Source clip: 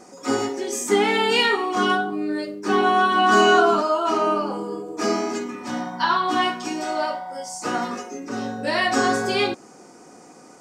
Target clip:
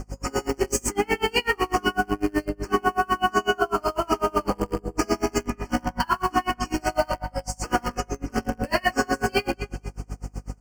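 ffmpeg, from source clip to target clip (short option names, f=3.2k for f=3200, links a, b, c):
-filter_complex "[0:a]asplit=2[a][b];[b]acrusher=bits=5:dc=4:mix=0:aa=0.000001,volume=-6.5dB[c];[a][c]amix=inputs=2:normalize=0,aeval=exprs='val(0)+0.0251*(sin(2*PI*50*n/s)+sin(2*PI*2*50*n/s)/2+sin(2*PI*3*50*n/s)/3+sin(2*PI*4*50*n/s)/4+sin(2*PI*5*50*n/s)/5)':c=same,asplit=2[d][e];[e]adelay=221,lowpass=f=4.8k:p=1,volume=-17dB,asplit=2[f][g];[g]adelay=221,lowpass=f=4.8k:p=1,volume=0.33,asplit=2[h][i];[i]adelay=221,lowpass=f=4.8k:p=1,volume=0.33[j];[d][f][h][j]amix=inputs=4:normalize=0,acompressor=threshold=-18dB:ratio=10,asuperstop=centerf=3700:order=20:qfactor=3.3,aeval=exprs='val(0)*pow(10,-32*(0.5-0.5*cos(2*PI*8*n/s))/20)':c=same,volume=4.5dB"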